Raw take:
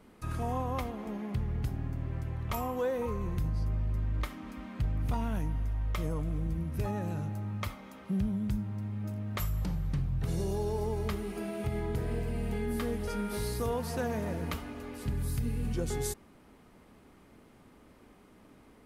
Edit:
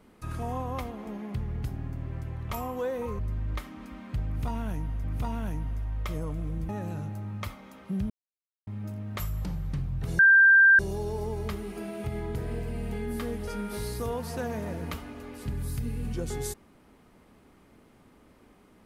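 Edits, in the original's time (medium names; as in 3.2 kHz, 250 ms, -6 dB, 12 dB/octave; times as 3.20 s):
3.19–3.85 s: delete
4.93–5.70 s: loop, 2 plays
6.58–6.89 s: delete
8.30–8.87 s: mute
10.39 s: add tone 1.58 kHz -13.5 dBFS 0.60 s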